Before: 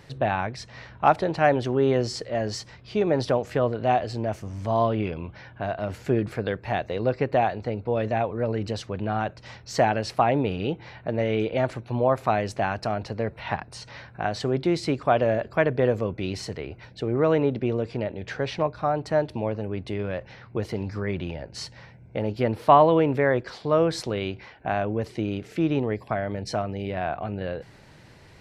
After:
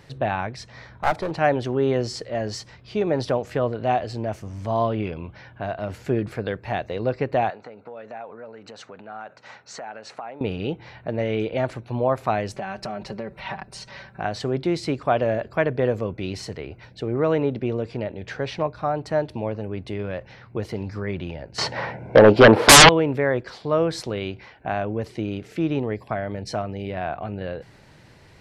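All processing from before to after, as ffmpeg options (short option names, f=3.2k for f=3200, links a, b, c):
-filter_complex "[0:a]asettb=1/sr,asplit=3[a][b][c];[a]atrim=end=0.724[d];[b]atrim=start=0.72:end=1.31,asetpts=PTS-STARTPTS,afade=t=in:d=0.004:c=qsin,afade=t=out:st=0.586:d=0.004:c=qsin,bandreject=f=2.8k:w=5.5,aeval=exprs='clip(val(0),-1,0.0631)':c=same[e];[c]atrim=start=1.306[f];[d][e]acrossfade=d=0.004:c1=hsin:c2=qsin[g];[g][f]acrossfade=d=0.004:c1=qsin:c2=hsin,asettb=1/sr,asplit=3[h][i][j];[h]atrim=end=7.504[k];[i]atrim=start=7.5:end=10.41,asetpts=PTS-STARTPTS,afade=t=in:d=0.004:c=qsin,afade=t=out:st=2.906:d=0.004:c=qsin,acompressor=threshold=-31dB:ratio=16:attack=3.2:release=140:knee=1:detection=peak,highpass=290,equalizer=f=340:t=q:w=4:g=-7,equalizer=f=820:t=q:w=4:g=3,equalizer=f=1.4k:t=q:w=4:g=6,equalizer=f=3.2k:t=q:w=4:g=-5,equalizer=f=5.1k:t=q:w=4:g=-8,lowpass=f=7.8k:w=0.5412,lowpass=f=7.8k:w=1.3066[l];[j]atrim=start=10.406[m];[k][l]acrossfade=d=0.004:c1=hsin:c2=qsin[n];[n][m]acrossfade=d=0.004:c1=qsin:c2=hsin,asettb=1/sr,asplit=3[o][p][q];[o]atrim=end=12.534[r];[p]atrim=start=12.53:end=14.21,asetpts=PTS-STARTPTS,afade=t=in:d=0.004:c=qsin,afade=t=out:st=1.676:d=0.004:c=qsin,aecho=1:1:5.2:0.73,atrim=end_sample=74088,acompressor=threshold=-26dB:ratio=10:attack=3.2:release=140:knee=1:detection=peak[s];[q]atrim=start=14.206[t];[r][s]acrossfade=d=0.004:c1=hsin:c2=qsin[u];[u][t]acrossfade=d=0.004:c1=qsin:c2=hsin,asettb=1/sr,asplit=3[v][w][x];[v]atrim=end=21.584[y];[w]atrim=start=21.58:end=22.89,asetpts=PTS-STARTPTS,afade=t=in:d=0.004:c=qsin,afade=t=out:st=1.306:d=0.004:c=qsin,bandpass=f=750:t=q:w=0.78,aeval=exprs='0.596*sin(PI/2*10*val(0)/0.596)':c=same[z];[x]atrim=start=22.886[aa];[y][z]acrossfade=d=0.004:c1=hsin:c2=qsin[ab];[ab][aa]acrossfade=d=0.004:c1=qsin:c2=hsin"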